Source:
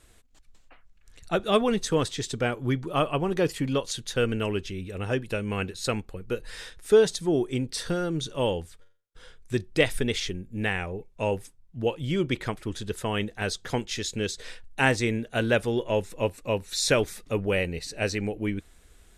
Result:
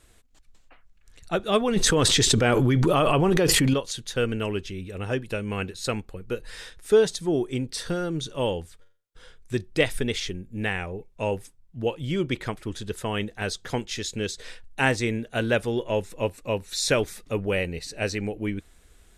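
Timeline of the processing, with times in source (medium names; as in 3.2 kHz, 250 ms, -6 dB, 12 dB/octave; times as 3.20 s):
1.76–3.74 s: level flattener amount 100%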